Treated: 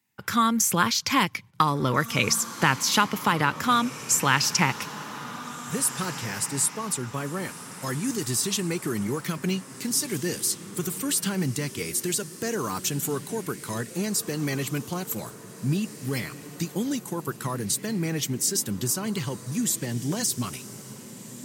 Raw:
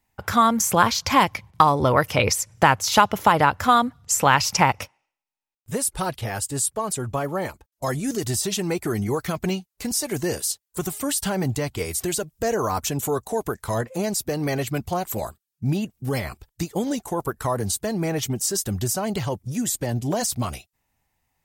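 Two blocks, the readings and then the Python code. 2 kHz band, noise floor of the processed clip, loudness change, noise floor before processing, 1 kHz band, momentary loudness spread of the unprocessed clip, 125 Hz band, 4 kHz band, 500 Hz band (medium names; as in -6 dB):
-1.5 dB, -43 dBFS, -3.0 dB, -84 dBFS, -6.5 dB, 11 LU, -3.0 dB, 0.0 dB, -7.5 dB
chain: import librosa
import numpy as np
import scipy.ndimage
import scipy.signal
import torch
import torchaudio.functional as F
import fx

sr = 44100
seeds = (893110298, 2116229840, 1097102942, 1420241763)

p1 = scipy.signal.sosfilt(scipy.signal.butter(4, 130.0, 'highpass', fs=sr, output='sos'), x)
p2 = fx.peak_eq(p1, sr, hz=680.0, db=-13.5, octaves=1.1)
y = p2 + fx.echo_diffused(p2, sr, ms=1820, feedback_pct=44, wet_db=-13.5, dry=0)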